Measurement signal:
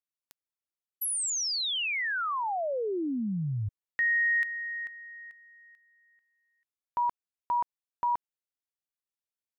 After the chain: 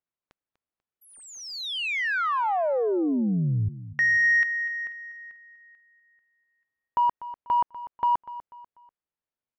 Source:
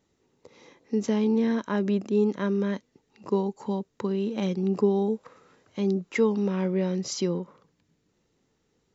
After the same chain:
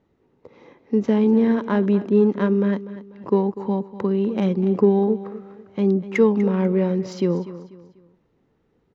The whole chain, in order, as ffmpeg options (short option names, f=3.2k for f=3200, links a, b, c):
-af "adynamicsmooth=sensitivity=1:basefreq=2.2k,aecho=1:1:245|490|735:0.178|0.0622|0.0218,volume=6.5dB"